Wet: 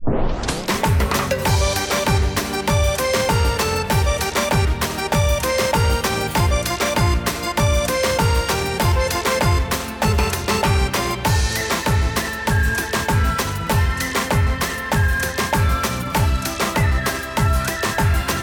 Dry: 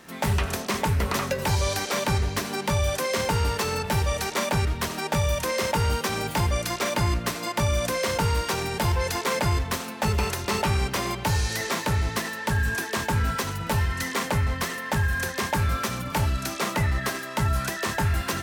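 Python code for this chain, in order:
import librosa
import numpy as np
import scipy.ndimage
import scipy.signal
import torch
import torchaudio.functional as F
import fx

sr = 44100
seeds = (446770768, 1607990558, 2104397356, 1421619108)

y = fx.tape_start_head(x, sr, length_s=0.76)
y = fx.rev_spring(y, sr, rt60_s=3.3, pass_ms=(44, 59), chirp_ms=60, drr_db=15.0)
y = F.gain(torch.from_numpy(y), 6.5).numpy()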